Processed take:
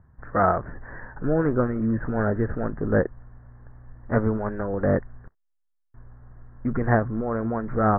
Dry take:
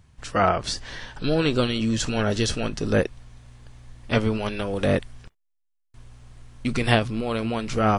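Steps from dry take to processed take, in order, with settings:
Butterworth low-pass 1,800 Hz 72 dB per octave

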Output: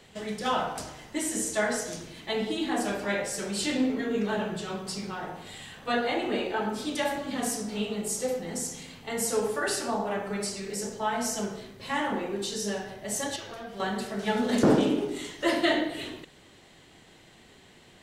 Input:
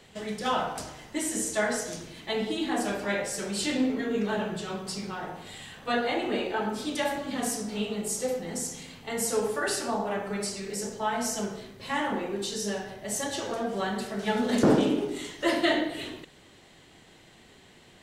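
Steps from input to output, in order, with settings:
0:13.36–0:13.80: octave-band graphic EQ 250/500/1,000/8,000 Hz −11/−8/−7/−10 dB

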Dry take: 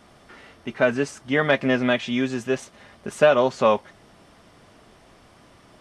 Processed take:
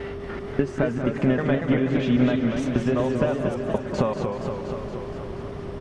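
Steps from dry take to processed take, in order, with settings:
slices reordered back to front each 197 ms, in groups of 3
low-shelf EQ 63 Hz −7.5 dB
downward compressor 6 to 1, threshold −35 dBFS, peak gain reduction 21.5 dB
RIAA equalisation playback
steady tone 400 Hz −42 dBFS
on a send: repeating echo 189 ms, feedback 60%, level −11 dB
on the sum: feedback echo with a swinging delay time 237 ms, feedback 70%, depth 163 cents, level −6 dB
level +9 dB

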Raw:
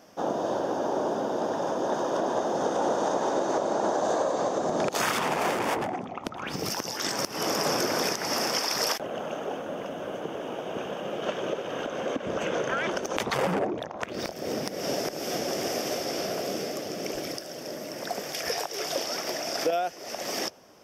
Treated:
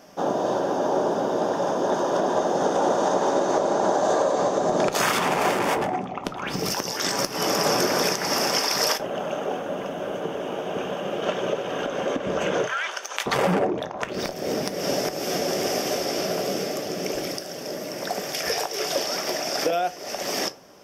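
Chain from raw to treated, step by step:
0:12.66–0:13.26: high-pass filter 1,200 Hz 12 dB per octave
convolution reverb RT60 0.25 s, pre-delay 5 ms, DRR 9 dB
level +4 dB

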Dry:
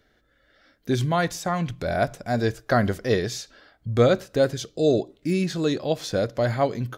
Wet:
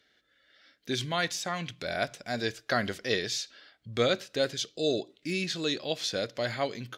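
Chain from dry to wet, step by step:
meter weighting curve D
level −8 dB

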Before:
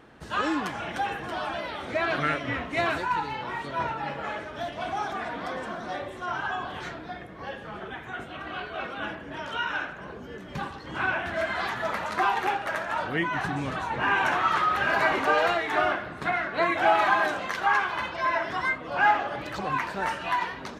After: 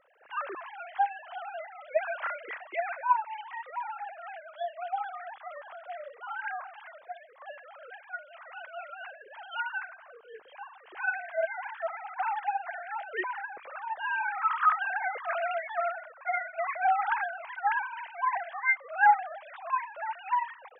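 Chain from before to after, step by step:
three sine waves on the formant tracks
level −4.5 dB

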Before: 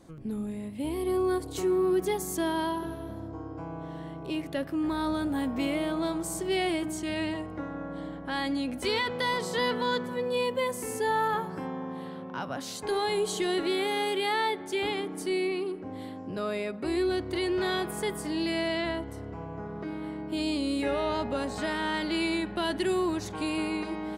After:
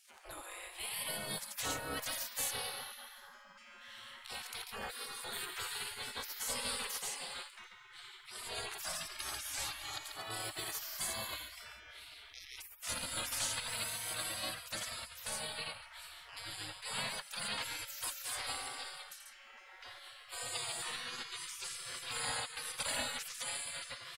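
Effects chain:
loudspeakers that aren't time-aligned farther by 29 metres −11 dB, 48 metres −9 dB
gate on every frequency bin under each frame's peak −30 dB weak
level +8 dB

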